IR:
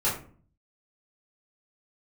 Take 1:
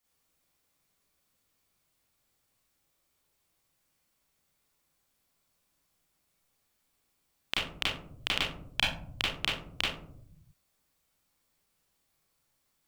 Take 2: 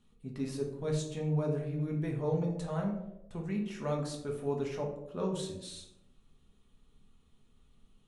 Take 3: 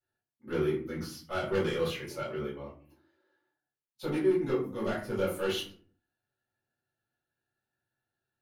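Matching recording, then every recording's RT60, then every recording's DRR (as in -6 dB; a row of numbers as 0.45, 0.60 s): 3; 0.65, 0.90, 0.45 s; -7.0, -1.0, -10.0 dB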